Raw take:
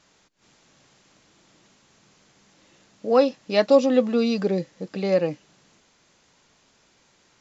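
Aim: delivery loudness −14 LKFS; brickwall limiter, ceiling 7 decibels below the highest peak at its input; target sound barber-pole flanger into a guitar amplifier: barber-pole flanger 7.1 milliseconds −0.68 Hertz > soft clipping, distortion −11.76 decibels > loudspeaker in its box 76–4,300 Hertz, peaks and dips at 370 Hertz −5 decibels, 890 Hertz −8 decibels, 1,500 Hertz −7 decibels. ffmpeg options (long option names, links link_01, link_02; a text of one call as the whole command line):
ffmpeg -i in.wav -filter_complex "[0:a]alimiter=limit=-12.5dB:level=0:latency=1,asplit=2[link_01][link_02];[link_02]adelay=7.1,afreqshift=-0.68[link_03];[link_01][link_03]amix=inputs=2:normalize=1,asoftclip=threshold=-23.5dB,highpass=76,equalizer=frequency=370:width_type=q:width=4:gain=-5,equalizer=frequency=890:width_type=q:width=4:gain=-8,equalizer=frequency=1500:width_type=q:width=4:gain=-7,lowpass=frequency=4300:width=0.5412,lowpass=frequency=4300:width=1.3066,volume=18dB" out.wav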